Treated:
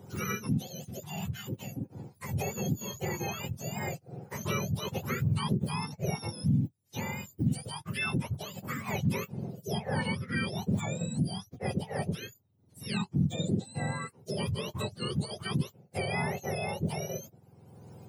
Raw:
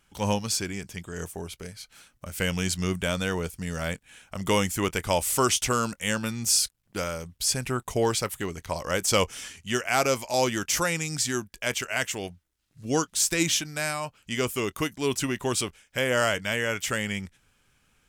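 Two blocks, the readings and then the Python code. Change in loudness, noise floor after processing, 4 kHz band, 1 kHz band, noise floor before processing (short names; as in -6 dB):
-7.0 dB, -65 dBFS, -10.5 dB, -8.5 dB, -69 dBFS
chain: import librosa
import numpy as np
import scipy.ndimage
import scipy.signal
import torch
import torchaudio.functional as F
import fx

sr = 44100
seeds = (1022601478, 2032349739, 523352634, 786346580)

y = fx.octave_mirror(x, sr, pivot_hz=1100.0)
y = fx.band_squash(y, sr, depth_pct=70)
y = F.gain(torch.from_numpy(y), -8.5).numpy()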